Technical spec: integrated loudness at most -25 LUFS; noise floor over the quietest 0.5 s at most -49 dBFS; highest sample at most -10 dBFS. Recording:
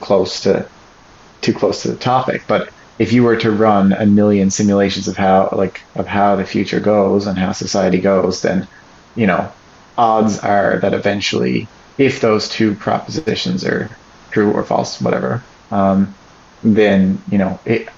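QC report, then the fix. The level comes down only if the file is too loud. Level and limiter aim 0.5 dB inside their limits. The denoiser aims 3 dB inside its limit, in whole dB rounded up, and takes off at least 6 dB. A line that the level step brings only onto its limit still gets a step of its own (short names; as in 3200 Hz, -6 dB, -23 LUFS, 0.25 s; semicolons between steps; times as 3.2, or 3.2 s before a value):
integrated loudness -15.5 LUFS: fail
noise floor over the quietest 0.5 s -44 dBFS: fail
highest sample -2.0 dBFS: fail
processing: gain -10 dB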